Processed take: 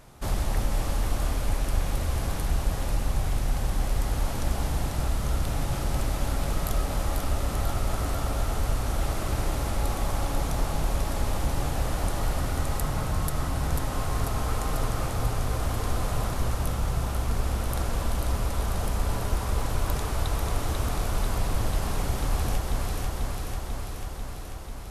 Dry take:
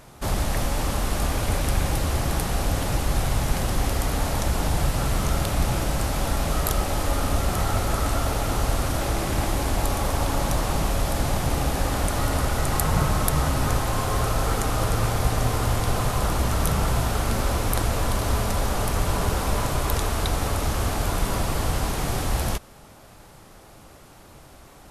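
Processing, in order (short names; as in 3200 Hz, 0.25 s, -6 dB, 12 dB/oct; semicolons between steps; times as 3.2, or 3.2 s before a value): low shelf 64 Hz +7 dB; echo with dull and thin repeats by turns 0.246 s, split 1300 Hz, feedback 85%, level -3.5 dB; vocal rider within 4 dB 0.5 s; gain -9 dB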